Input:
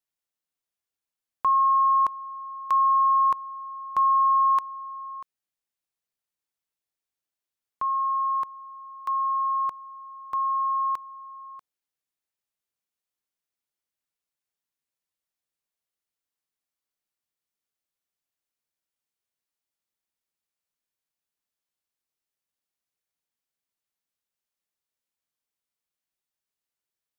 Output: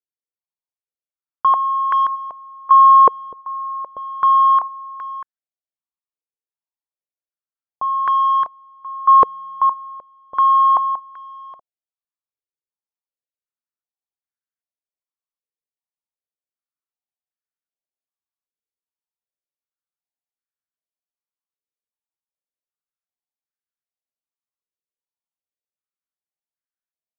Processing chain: gate -30 dBFS, range -8 dB; compressor 8:1, threshold -23 dBFS, peak gain reduction 5 dB; sample leveller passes 3; stepped low-pass 2.6 Hz 470–1600 Hz

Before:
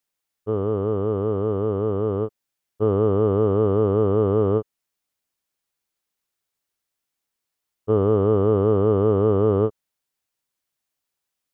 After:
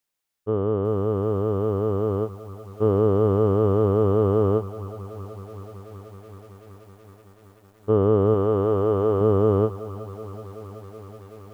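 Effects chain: 8.34–9.21 bell 150 Hz -8 dB 1.4 oct; lo-fi delay 0.377 s, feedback 80%, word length 8-bit, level -15 dB

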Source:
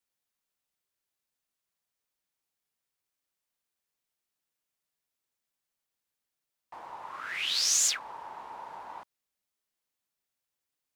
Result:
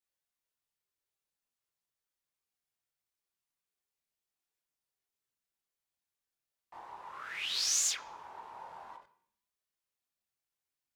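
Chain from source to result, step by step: chorus voices 4, 0.82 Hz, delay 24 ms, depth 1.4 ms; on a send at -12 dB: reverb RT60 0.65 s, pre-delay 3 ms; on the sum: ending taper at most 190 dB/s; gain -2 dB

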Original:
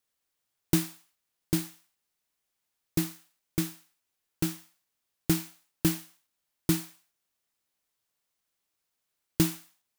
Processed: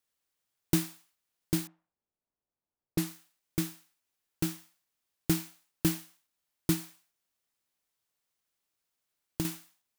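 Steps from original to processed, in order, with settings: 1.67–3.07 low-pass opened by the level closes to 760 Hz, open at -28 dBFS; 6.73–9.45 compressor 3:1, threshold -29 dBFS, peak gain reduction 9 dB; gain -2 dB

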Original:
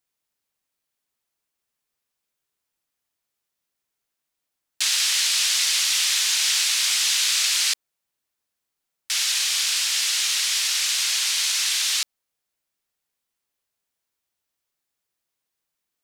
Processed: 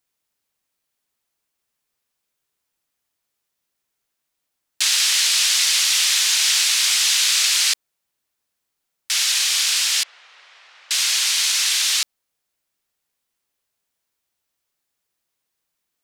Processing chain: 10.03–10.91 ladder band-pass 640 Hz, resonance 20%; gain +3.5 dB

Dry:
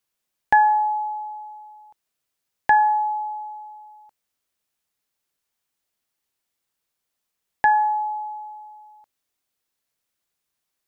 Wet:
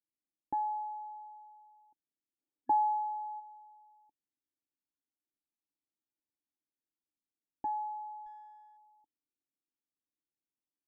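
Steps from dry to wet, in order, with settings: Wiener smoothing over 25 samples; 2.39–3.4 spectral gain 240–1700 Hz +7 dB; in parallel at -1.5 dB: compressor, threshold -28 dBFS, peak gain reduction 19.5 dB; on the sum: vocal tract filter u; 8.26–8.77 running maximum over 3 samples; gain -7.5 dB

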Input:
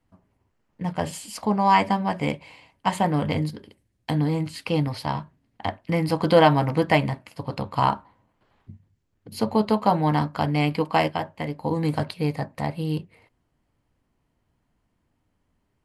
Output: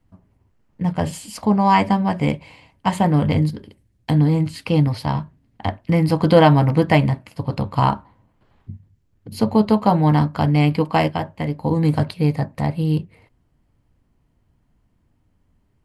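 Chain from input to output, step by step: low shelf 240 Hz +9.5 dB; gain +1.5 dB

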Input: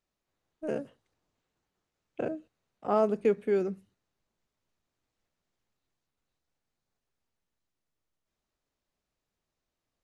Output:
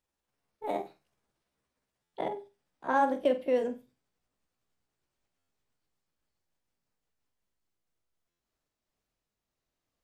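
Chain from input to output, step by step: gliding pitch shift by +6 st ending unshifted; flutter echo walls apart 8.1 m, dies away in 0.26 s; stuck buffer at 2.03/5.38/8.29, samples 512, times 8

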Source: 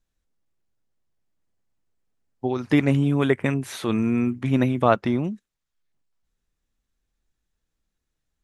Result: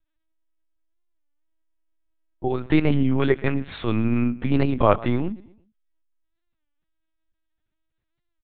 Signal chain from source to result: feedback echo 0.121 s, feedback 41%, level -20 dB; LPC vocoder at 8 kHz pitch kept; record warp 33 1/3 rpm, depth 160 cents; gain +1 dB

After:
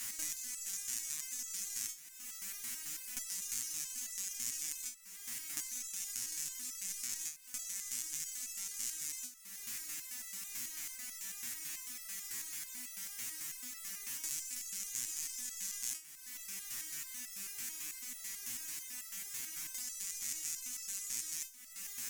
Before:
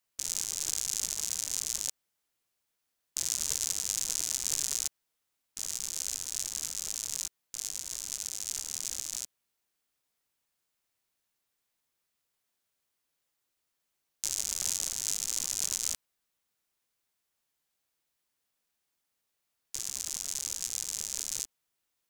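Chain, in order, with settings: per-bin compression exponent 0.4; high shelf 2800 Hz +11 dB; compressor 3:1, threshold -37 dBFS, peak gain reduction 18.5 dB; graphic EQ 250/500/2000/4000/8000 Hz +10/-10/+9/-8/-4 dB; stepped resonator 9.1 Hz 120–660 Hz; gain +14 dB

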